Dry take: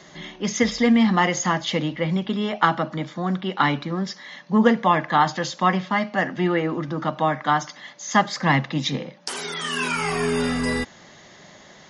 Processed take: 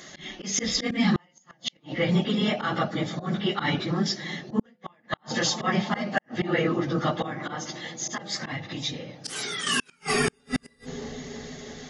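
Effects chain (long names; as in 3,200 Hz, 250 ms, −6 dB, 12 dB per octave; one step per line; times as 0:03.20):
random phases in long frames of 50 ms
hum removal 100.4 Hz, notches 9
volume swells 166 ms
notch filter 970 Hz, Q 5.6
0:07.24–0:09.67: downward compressor 4 to 1, threshold −33 dBFS, peak gain reduction 12 dB
high-shelf EQ 2,600 Hz +7 dB
bucket-brigade delay 324 ms, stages 2,048, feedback 73%, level −14.5 dB
gate with flip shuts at −12 dBFS, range −41 dB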